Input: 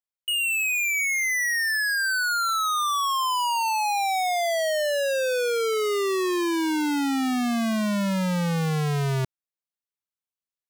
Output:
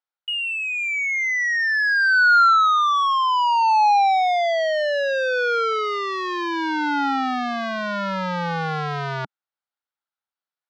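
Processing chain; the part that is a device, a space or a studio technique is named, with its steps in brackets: kitchen radio (cabinet simulation 210–4500 Hz, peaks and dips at 220 Hz -8 dB, 380 Hz -9 dB, 830 Hz +7 dB, 1.4 kHz +9 dB, 2.6 kHz -4 dB); trim +2.5 dB

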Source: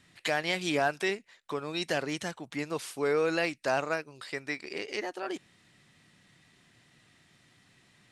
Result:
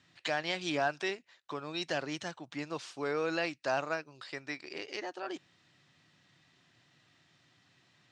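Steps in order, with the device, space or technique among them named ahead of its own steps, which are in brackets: car door speaker (cabinet simulation 100–6600 Hz, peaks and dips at 210 Hz -8 dB, 440 Hz -5 dB, 2.1 kHz -4 dB); trim -2.5 dB

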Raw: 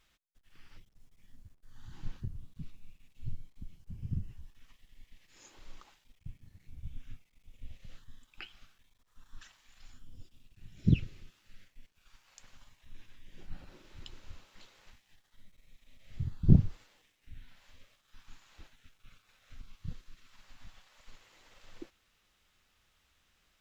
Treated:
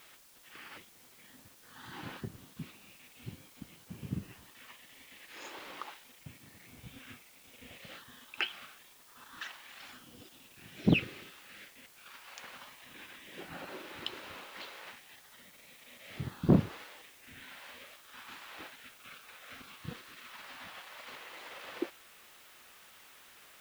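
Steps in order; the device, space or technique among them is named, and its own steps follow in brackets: tape answering machine (band-pass 360–3200 Hz; saturation -31 dBFS, distortion -11 dB; wow and flutter; white noise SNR 19 dB); trim +16 dB

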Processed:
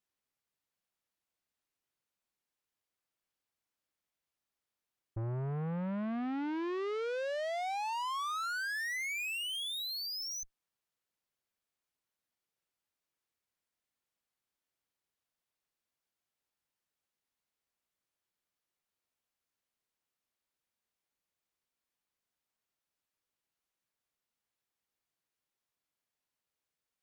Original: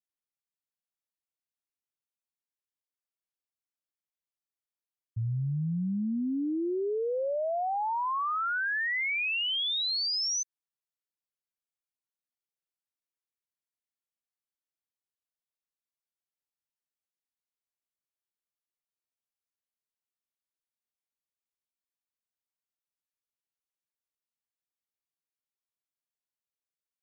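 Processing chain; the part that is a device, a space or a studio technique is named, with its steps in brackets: tube preamp driven hard (valve stage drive 44 dB, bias 0.4; treble shelf 4.4 kHz -6.5 dB); trim +9 dB

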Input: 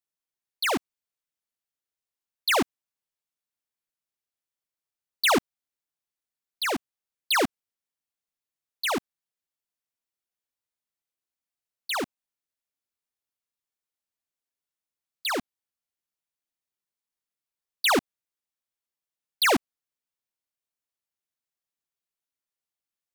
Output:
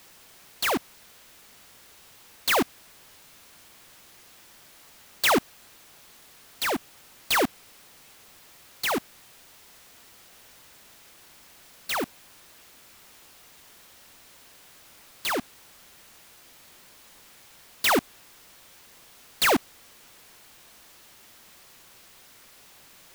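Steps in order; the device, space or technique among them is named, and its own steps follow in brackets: early CD player with a faulty converter (jump at every zero crossing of -42.5 dBFS; sampling jitter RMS 0.031 ms)

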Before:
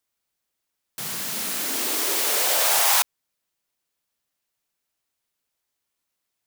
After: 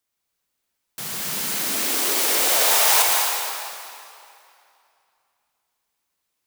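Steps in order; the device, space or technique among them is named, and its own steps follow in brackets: stairwell (reverberation RT60 2.6 s, pre-delay 118 ms, DRR -1 dB)

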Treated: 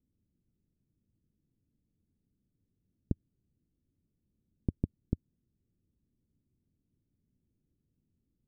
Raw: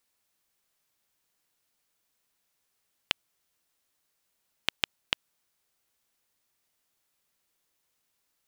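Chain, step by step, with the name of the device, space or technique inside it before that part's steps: the neighbour's flat through the wall (low-pass 270 Hz 24 dB/octave; peaking EQ 89 Hz +4 dB 0.92 oct); trim +16.5 dB

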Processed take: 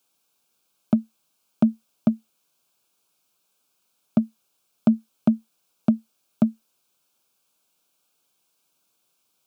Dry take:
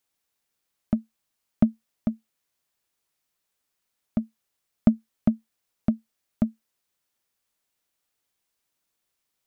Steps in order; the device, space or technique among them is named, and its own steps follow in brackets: PA system with an anti-feedback notch (high-pass 120 Hz 24 dB/octave; Butterworth band-stop 1.9 kHz, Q 2.9; peak limiter -17.5 dBFS, peak gain reduction 10 dB); trim +8.5 dB

